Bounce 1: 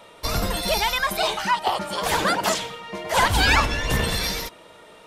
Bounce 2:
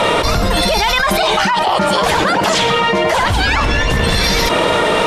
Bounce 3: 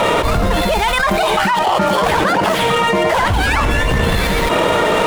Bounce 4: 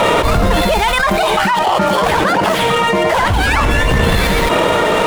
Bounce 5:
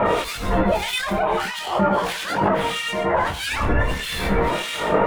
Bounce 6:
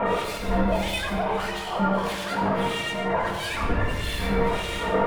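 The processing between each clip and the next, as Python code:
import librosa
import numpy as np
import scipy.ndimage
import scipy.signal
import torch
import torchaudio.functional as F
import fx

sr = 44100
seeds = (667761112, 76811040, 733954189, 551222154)

y1 = scipy.signal.sosfilt(scipy.signal.butter(2, 12000.0, 'lowpass', fs=sr, output='sos'), x)
y1 = fx.high_shelf(y1, sr, hz=6400.0, db=-9.0)
y1 = fx.env_flatten(y1, sr, amount_pct=100)
y1 = y1 * librosa.db_to_amplitude(2.0)
y2 = scipy.ndimage.median_filter(y1, 9, mode='constant')
y3 = fx.rider(y2, sr, range_db=10, speed_s=0.5)
y3 = y3 * librosa.db_to_amplitude(1.5)
y4 = fx.harmonic_tremolo(y3, sr, hz=1.6, depth_pct=100, crossover_hz=1900.0)
y4 = y4 + 10.0 ** (-20.0 / 20.0) * np.pad(y4, (int(131 * sr / 1000.0), 0))[:len(y4)]
y4 = fx.detune_double(y4, sr, cents=14)
y5 = fx.room_shoebox(y4, sr, seeds[0], volume_m3=2600.0, walls='mixed', distance_m=1.7)
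y5 = y5 * librosa.db_to_amplitude(-7.0)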